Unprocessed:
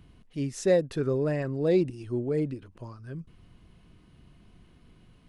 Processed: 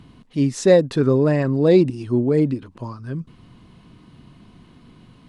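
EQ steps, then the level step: ten-band EQ 125 Hz +8 dB, 250 Hz +11 dB, 500 Hz +4 dB, 1000 Hz +11 dB, 2000 Hz +4 dB, 4000 Hz +9 dB, 8000 Hz +6 dB; 0.0 dB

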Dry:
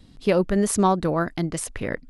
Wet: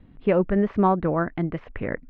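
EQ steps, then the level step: LPF 2500 Hz 24 dB/oct; air absorption 130 m; 0.0 dB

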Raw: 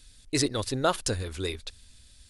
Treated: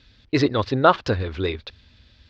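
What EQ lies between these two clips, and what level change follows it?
HPF 68 Hz; Bessel low-pass 2800 Hz, order 8; dynamic EQ 1100 Hz, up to +5 dB, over -39 dBFS, Q 1.5; +8.0 dB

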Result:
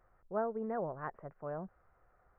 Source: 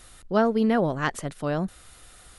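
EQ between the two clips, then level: Gaussian blur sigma 7 samples; bell 270 Hz -9 dB 0.54 oct; low shelf 350 Hz -11.5 dB; -6.5 dB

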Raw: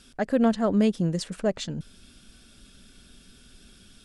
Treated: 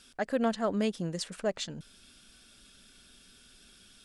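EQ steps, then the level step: low shelf 390 Hz -10 dB; -1.5 dB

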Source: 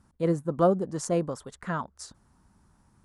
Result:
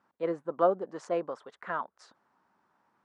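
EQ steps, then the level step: BPF 480–2600 Hz; 0.0 dB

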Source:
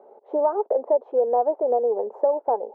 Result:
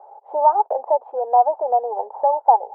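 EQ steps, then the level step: resonant high-pass 830 Hz, resonance Q 4.9; air absorption 440 m; +1.5 dB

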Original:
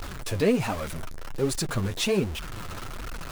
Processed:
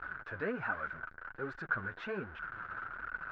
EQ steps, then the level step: band-pass 1500 Hz, Q 12; air absorption 120 m; tilt -4 dB/oct; +12.5 dB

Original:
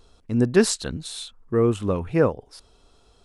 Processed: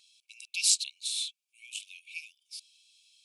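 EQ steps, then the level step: brick-wall FIR high-pass 2200 Hz; +2.5 dB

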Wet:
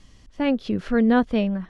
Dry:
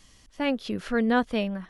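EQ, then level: air absorption 53 m; low shelf 460 Hz +8 dB; 0.0 dB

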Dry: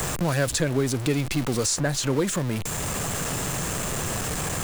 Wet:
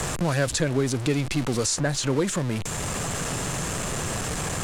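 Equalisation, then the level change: LPF 10000 Hz 12 dB/oct; 0.0 dB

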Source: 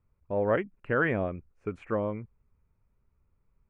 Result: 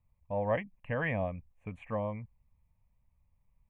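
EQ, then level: fixed phaser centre 1400 Hz, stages 6; 0.0 dB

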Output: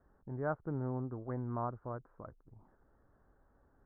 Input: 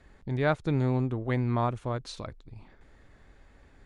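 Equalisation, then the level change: steep low-pass 1500 Hz 48 dB/oct; air absorption 330 m; tilt +1.5 dB/oct; -7.0 dB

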